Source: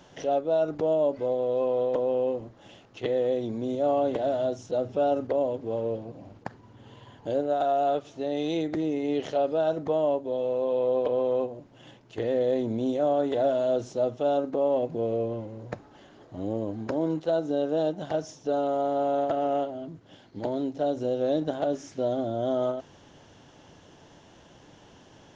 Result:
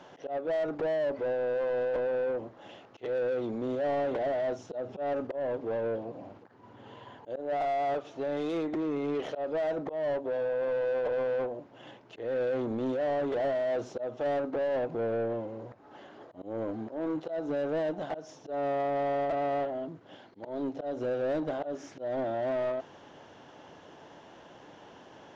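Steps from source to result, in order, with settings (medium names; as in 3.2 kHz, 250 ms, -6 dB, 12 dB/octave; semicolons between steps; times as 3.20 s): slow attack 210 ms; overdrive pedal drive 22 dB, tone 1.1 kHz, clips at -15 dBFS; trim -7.5 dB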